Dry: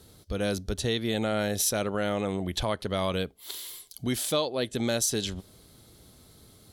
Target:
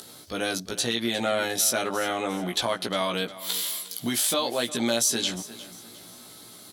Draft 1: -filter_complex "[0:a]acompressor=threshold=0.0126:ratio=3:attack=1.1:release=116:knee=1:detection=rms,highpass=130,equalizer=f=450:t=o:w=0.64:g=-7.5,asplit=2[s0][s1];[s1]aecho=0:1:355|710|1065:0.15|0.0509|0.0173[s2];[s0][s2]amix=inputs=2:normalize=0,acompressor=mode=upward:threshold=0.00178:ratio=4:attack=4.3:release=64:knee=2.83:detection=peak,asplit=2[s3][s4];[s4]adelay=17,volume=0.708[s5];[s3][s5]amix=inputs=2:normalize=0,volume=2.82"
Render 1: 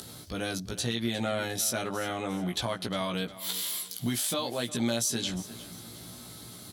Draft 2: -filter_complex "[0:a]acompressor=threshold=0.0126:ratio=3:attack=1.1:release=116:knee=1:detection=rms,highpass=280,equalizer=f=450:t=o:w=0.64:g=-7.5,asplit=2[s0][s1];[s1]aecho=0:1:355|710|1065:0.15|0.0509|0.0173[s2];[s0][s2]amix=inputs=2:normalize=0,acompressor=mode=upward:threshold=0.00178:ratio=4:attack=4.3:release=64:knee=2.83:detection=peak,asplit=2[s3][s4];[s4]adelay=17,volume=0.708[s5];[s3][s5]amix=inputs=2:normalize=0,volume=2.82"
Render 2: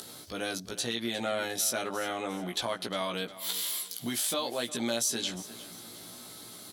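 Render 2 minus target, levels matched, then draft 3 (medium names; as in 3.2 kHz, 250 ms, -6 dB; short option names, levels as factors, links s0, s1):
compression: peak gain reduction +6 dB
-filter_complex "[0:a]acompressor=threshold=0.0355:ratio=3:attack=1.1:release=116:knee=1:detection=rms,highpass=280,equalizer=f=450:t=o:w=0.64:g=-7.5,asplit=2[s0][s1];[s1]aecho=0:1:355|710|1065:0.15|0.0509|0.0173[s2];[s0][s2]amix=inputs=2:normalize=0,acompressor=mode=upward:threshold=0.00178:ratio=4:attack=4.3:release=64:knee=2.83:detection=peak,asplit=2[s3][s4];[s4]adelay=17,volume=0.708[s5];[s3][s5]amix=inputs=2:normalize=0,volume=2.82"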